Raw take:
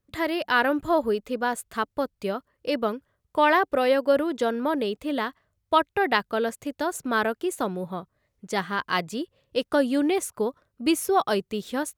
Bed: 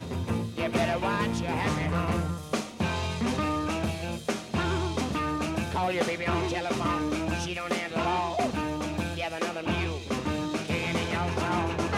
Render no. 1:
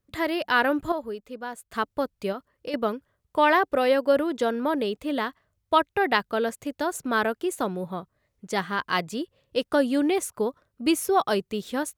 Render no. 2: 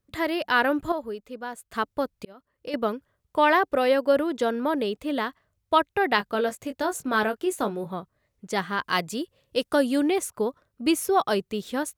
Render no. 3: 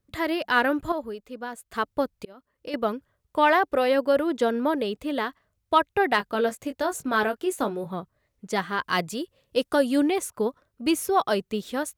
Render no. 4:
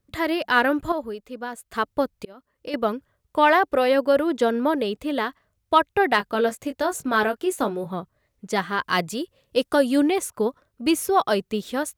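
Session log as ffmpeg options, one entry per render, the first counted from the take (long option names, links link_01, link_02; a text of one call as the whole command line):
ffmpeg -i in.wav -filter_complex "[0:a]asettb=1/sr,asplit=3[link_01][link_02][link_03];[link_01]atrim=end=2.324[link_04];[link_02]atrim=start=2.32:end=2.74,asetpts=PTS-STARTPTS,afade=type=in:duration=0.004:curve=qsin,afade=type=out:start_time=0.416:duration=0.004:curve=qsin,acompressor=threshold=-30dB:ratio=3:attack=3.2:release=140:knee=1:detection=peak[link_05];[link_03]atrim=start=2.736[link_06];[link_04][link_05]acrossfade=duration=0.004:curve1=hsin:curve2=qsin[link_07];[link_07][link_06]acrossfade=duration=0.004:curve1=qsin:curve2=hsin,asplit=3[link_08][link_09][link_10];[link_08]atrim=end=0.922[link_11];[link_09]atrim=start=0.918:end=1.722,asetpts=PTS-STARTPTS,volume=-9dB[link_12];[link_10]atrim=start=1.718[link_13];[link_11][link_12]acrossfade=duration=0.004:curve1=hsin:curve2=hsin[link_14];[link_14][link_13]acrossfade=duration=0.004:curve1=hsin:curve2=hsin" out.wav
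ffmpeg -i in.wav -filter_complex "[0:a]asettb=1/sr,asplit=3[link_01][link_02][link_03];[link_01]atrim=end=6.164[link_04];[link_02]atrim=start=6.16:end=7.93,asetpts=PTS-STARTPTS,afade=type=in:duration=0.004:curve=qsin,afade=type=out:start_time=1.766:duration=0.004:curve=qsin,asplit=2[link_05][link_06];[link_06]adelay=19,volume=-8dB[link_07];[link_05][link_07]amix=inputs=2:normalize=0,atrim=end_sample=78057[link_08];[link_03]atrim=start=7.926[link_09];[link_04][link_08]acrossfade=duration=0.004:curve1=hsin:curve2=qsin[link_10];[link_10][link_09]acrossfade=duration=0.004:curve1=qsin:curve2=hsin,asettb=1/sr,asplit=3[link_11][link_12][link_13];[link_11]atrim=end=8.844[link_14];[link_12]atrim=start=8.84:end=10.03,asetpts=PTS-STARTPTS,afade=type=in:duration=0.004:curve=qsin,afade=type=out:start_time=1.186:duration=0.004:curve=qsin,equalizer=frequency=12000:width_type=o:width=1.9:gain=6[link_15];[link_13]atrim=start=10.026[link_16];[link_14][link_15]acrossfade=duration=0.004:curve1=hsin:curve2=qsin[link_17];[link_17][link_16]acrossfade=duration=0.004:curve1=qsin:curve2=hsin,asplit=2[link_18][link_19];[link_18]atrim=end=2.25,asetpts=PTS-STARTPTS,afade=type=out:start_time=2.246:duration=0.004:curve=hsin[link_20];[link_19]atrim=start=2.25,asetpts=PTS-STARTPTS,afade=type=in:duration=0.51[link_21];[link_20][link_21]concat=n=2:v=0:a=1" out.wav
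ffmpeg -i in.wav -filter_complex "[0:a]acrossover=split=2300[link_01][link_02];[link_01]aphaser=in_gain=1:out_gain=1:delay=4.9:decay=0.24:speed=1:type=triangular[link_03];[link_02]asoftclip=type=tanh:threshold=-22dB[link_04];[link_03][link_04]amix=inputs=2:normalize=0" out.wav
ffmpeg -i in.wav -af "volume=2.5dB" out.wav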